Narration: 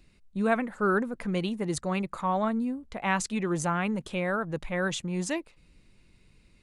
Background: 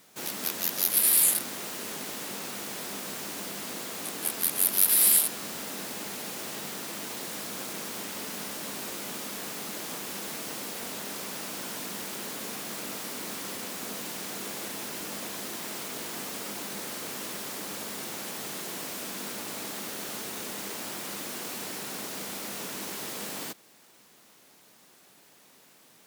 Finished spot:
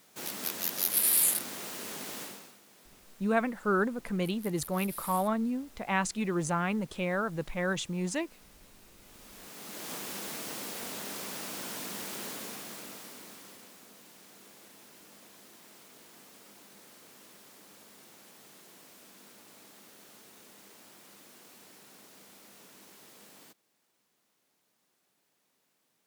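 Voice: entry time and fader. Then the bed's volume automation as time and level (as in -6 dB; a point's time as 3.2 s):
2.85 s, -2.0 dB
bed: 2.22 s -3.5 dB
2.6 s -22 dB
8.95 s -22 dB
9.92 s -2.5 dB
12.27 s -2.5 dB
13.89 s -18 dB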